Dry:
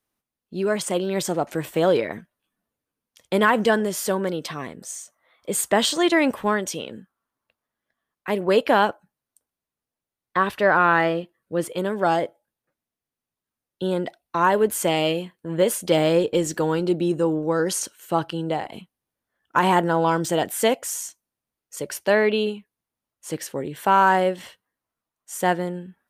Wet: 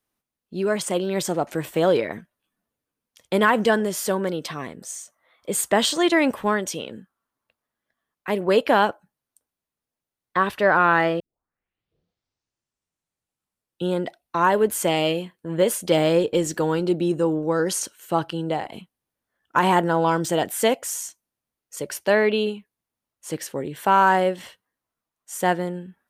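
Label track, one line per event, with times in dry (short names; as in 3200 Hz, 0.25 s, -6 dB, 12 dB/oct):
11.200000	11.200000	tape start 2.76 s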